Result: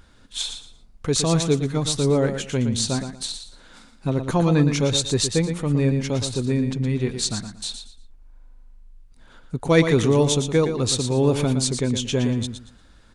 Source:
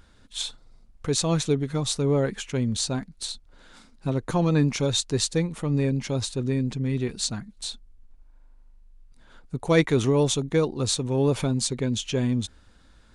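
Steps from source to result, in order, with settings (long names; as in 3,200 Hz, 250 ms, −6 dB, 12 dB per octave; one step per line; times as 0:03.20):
repeating echo 116 ms, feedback 24%, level −8.5 dB
level +3 dB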